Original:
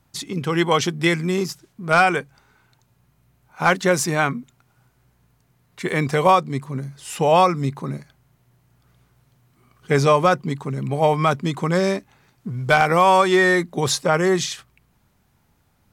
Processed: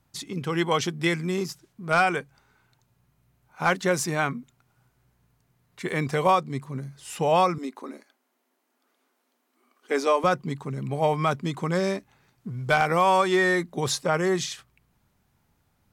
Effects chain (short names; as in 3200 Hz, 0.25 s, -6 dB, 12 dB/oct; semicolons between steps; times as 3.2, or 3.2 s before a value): 7.58–10.24 elliptic high-pass 250 Hz, stop band 50 dB; gain -5.5 dB